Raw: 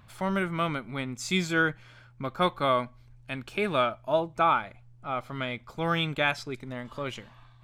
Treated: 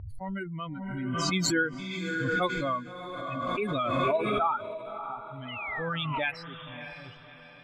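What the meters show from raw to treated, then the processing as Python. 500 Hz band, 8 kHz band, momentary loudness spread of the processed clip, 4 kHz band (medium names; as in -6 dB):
-2.0 dB, +4.5 dB, 15 LU, -1.5 dB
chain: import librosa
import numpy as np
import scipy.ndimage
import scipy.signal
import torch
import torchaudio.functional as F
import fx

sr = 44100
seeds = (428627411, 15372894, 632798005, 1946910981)

p1 = fx.bin_expand(x, sr, power=3.0)
p2 = fx.env_lowpass(p1, sr, base_hz=1400.0, full_db=-26.5)
p3 = fx.spec_paint(p2, sr, seeds[0], shape='fall', start_s=5.48, length_s=0.77, low_hz=810.0, high_hz=3100.0, level_db=-44.0)
p4 = p3 + fx.echo_diffused(p3, sr, ms=620, feedback_pct=42, wet_db=-10.0, dry=0)
y = fx.pre_swell(p4, sr, db_per_s=20.0)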